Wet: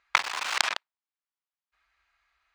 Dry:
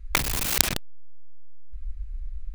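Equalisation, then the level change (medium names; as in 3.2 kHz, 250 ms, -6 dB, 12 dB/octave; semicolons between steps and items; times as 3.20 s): resonant high-pass 1 kHz, resonance Q 1.6; distance through air 130 m; +2.0 dB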